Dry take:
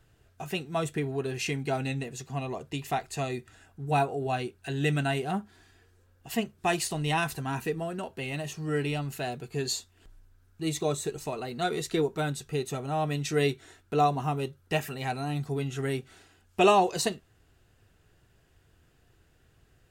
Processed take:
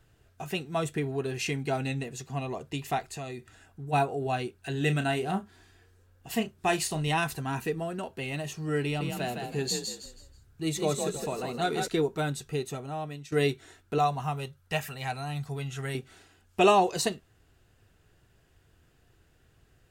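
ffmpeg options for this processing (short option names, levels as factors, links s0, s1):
-filter_complex "[0:a]asplit=3[s0][s1][s2];[s0]afade=t=out:st=3.08:d=0.02[s3];[s1]acompressor=threshold=0.0141:ratio=2.5:attack=3.2:release=140:knee=1:detection=peak,afade=t=in:st=3.08:d=0.02,afade=t=out:st=3.92:d=0.02[s4];[s2]afade=t=in:st=3.92:d=0.02[s5];[s3][s4][s5]amix=inputs=3:normalize=0,asettb=1/sr,asplit=3[s6][s7][s8];[s6]atrim=end=4.724[s9];[s7]atrim=start=4.72:end=7.08,asetpts=PTS-STARTPTS,afade=t=in:d=0.004:c=qsin,afade=t=out:st=2.356:d=0.004:c=qsin,asplit=2[s10][s11];[s11]adelay=32,volume=0.316[s12];[s10][s12]amix=inputs=2:normalize=0,atrim=end_sample=104076[s13];[s8]atrim=start=7.076[s14];[s9][s13]acrossfade=d=0.004:c1=hsin:c2=qsin[s15];[s15][s14]acrossfade=d=0.004:c1=qsin:c2=hsin,asettb=1/sr,asplit=3[s16][s17][s18];[s16]atrim=end=8.844[s19];[s17]atrim=start=8.84:end=11.88,asetpts=PTS-STARTPTS,afade=t=in:d=0.004:c=qsin,afade=t=out:st=3.036:d=0.004:c=qsin,asplit=5[s20][s21][s22][s23][s24];[s21]adelay=161,afreqshift=37,volume=0.562[s25];[s22]adelay=322,afreqshift=74,volume=0.174[s26];[s23]adelay=483,afreqshift=111,volume=0.0543[s27];[s24]adelay=644,afreqshift=148,volume=0.0168[s28];[s20][s25][s26][s27][s28]amix=inputs=5:normalize=0,atrim=end_sample=134064[s29];[s18]atrim=start=11.876[s30];[s19][s29]acrossfade=d=0.004:c1=hsin:c2=qsin[s31];[s31][s30]acrossfade=d=0.004:c1=qsin:c2=hsin,asettb=1/sr,asplit=3[s32][s33][s34];[s32]atrim=end=13.984[s35];[s33]atrim=start=13.98:end=15.95,asetpts=PTS-STARTPTS,afade=t=in:d=0.004:c=qsin,afade=t=out:st=1.966:d=0.004:c=qsin,equalizer=f=320:w=1.5:g=-12.5[s36];[s34]atrim=start=15.946[s37];[s35][s36]acrossfade=d=0.004:c1=hsin:c2=qsin[s38];[s38][s37]acrossfade=d=0.004:c1=qsin:c2=hsin,asplit=2[s39][s40];[s39]atrim=end=13.32,asetpts=PTS-STARTPTS,afade=t=out:st=12.48:d=0.84:silence=0.149624[s41];[s40]atrim=start=13.32,asetpts=PTS-STARTPTS,afade=t=in:d=0.004:c=hsin:silence=0.149624[s42];[s41][s42]concat=n=2:v=0:a=1"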